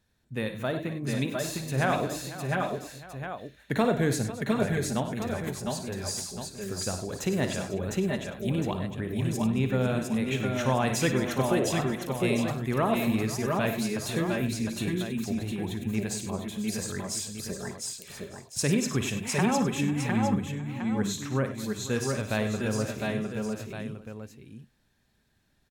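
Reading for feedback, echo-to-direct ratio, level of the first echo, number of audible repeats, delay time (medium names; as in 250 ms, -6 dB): no regular repeats, 0.0 dB, -10.5 dB, 10, 55 ms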